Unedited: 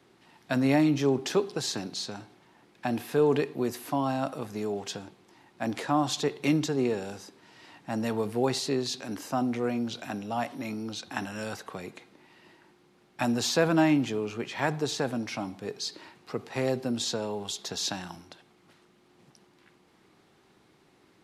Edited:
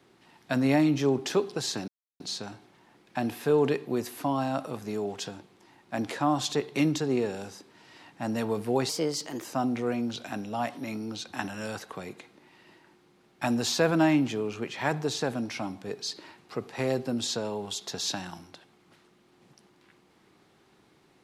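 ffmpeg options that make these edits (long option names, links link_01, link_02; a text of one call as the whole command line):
ffmpeg -i in.wav -filter_complex "[0:a]asplit=4[link_01][link_02][link_03][link_04];[link_01]atrim=end=1.88,asetpts=PTS-STARTPTS,afade=type=out:start_time=1.876:duration=0.004:curve=hsin,apad=pad_dur=0.32[link_05];[link_02]atrim=start=1.88:end=8.574,asetpts=PTS-STARTPTS,afade=type=in:duration=0.004:curve=hsin[link_06];[link_03]atrim=start=8.57:end=9.22,asetpts=PTS-STARTPTS,asetrate=51597,aresample=44100[link_07];[link_04]atrim=start=9.216[link_08];[link_05][link_06]concat=n=2:v=0:a=1[link_09];[link_09][link_07]acrossfade=duration=0.004:curve1=hsin:curve2=hsin[link_10];[link_10][link_08]acrossfade=duration=0.004:curve1=hsin:curve2=hsin" out.wav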